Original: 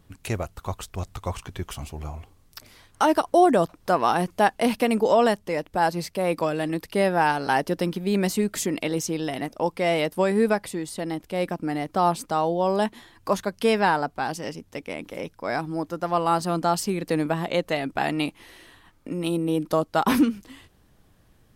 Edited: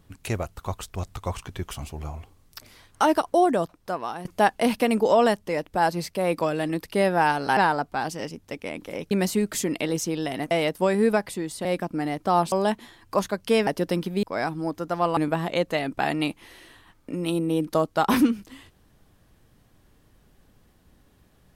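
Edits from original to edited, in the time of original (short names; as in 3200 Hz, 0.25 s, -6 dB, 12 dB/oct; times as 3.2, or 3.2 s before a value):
3.03–4.25 fade out, to -14.5 dB
7.57–8.13 swap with 13.81–15.35
9.53–9.88 cut
11.02–11.34 cut
12.21–12.66 cut
16.29–17.15 cut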